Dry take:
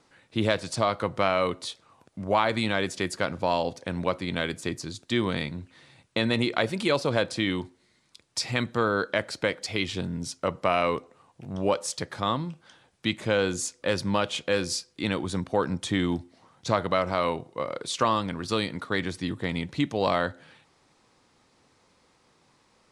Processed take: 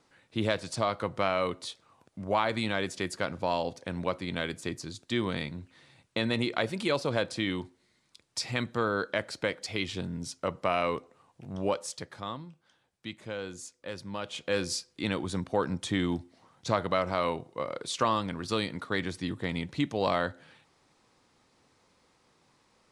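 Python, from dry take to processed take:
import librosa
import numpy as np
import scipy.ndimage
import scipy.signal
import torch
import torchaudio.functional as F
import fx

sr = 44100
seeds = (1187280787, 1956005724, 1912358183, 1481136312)

y = fx.gain(x, sr, db=fx.line((11.66, -4.0), (12.5, -13.0), (14.1, -13.0), (14.57, -3.0)))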